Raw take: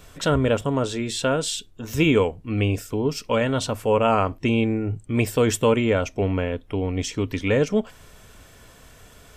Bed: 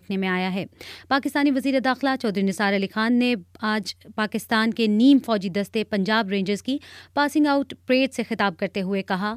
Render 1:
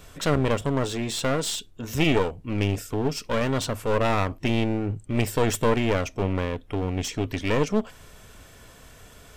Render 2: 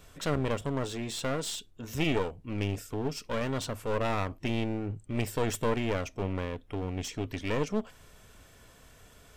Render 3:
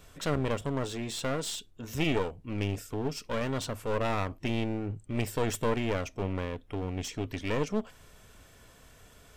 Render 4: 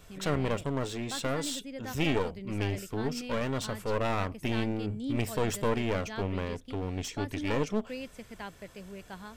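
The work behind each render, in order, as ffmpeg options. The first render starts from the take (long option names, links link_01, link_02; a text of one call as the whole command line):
ffmpeg -i in.wav -af "aeval=exprs='clip(val(0),-1,0.0355)':channel_layout=same" out.wav
ffmpeg -i in.wav -af "volume=-7dB" out.wav
ffmpeg -i in.wav -af anull out.wav
ffmpeg -i in.wav -i bed.wav -filter_complex "[1:a]volume=-20dB[link_01];[0:a][link_01]amix=inputs=2:normalize=0" out.wav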